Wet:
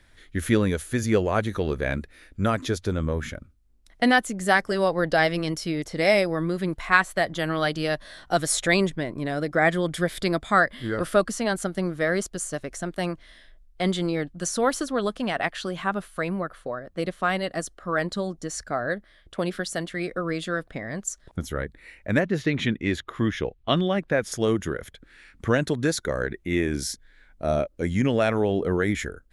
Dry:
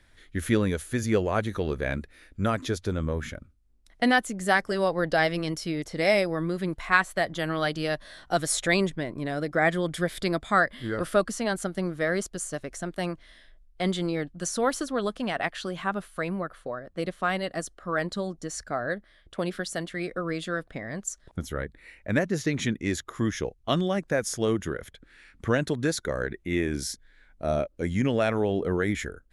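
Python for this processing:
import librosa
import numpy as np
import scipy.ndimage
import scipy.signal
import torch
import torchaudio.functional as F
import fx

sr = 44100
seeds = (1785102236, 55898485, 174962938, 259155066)

y = fx.high_shelf_res(x, sr, hz=4600.0, db=-9.0, q=1.5, at=(22.2, 24.32))
y = y * librosa.db_to_amplitude(2.5)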